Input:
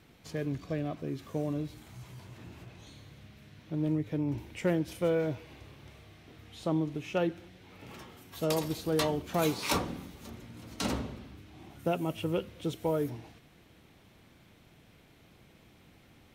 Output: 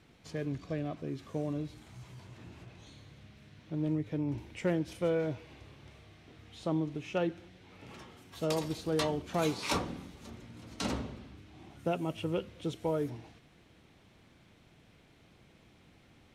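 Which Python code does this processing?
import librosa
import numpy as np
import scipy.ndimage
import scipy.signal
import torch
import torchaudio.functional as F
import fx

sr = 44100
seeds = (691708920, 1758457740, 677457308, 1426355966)

y = scipy.signal.sosfilt(scipy.signal.butter(2, 9200.0, 'lowpass', fs=sr, output='sos'), x)
y = F.gain(torch.from_numpy(y), -2.0).numpy()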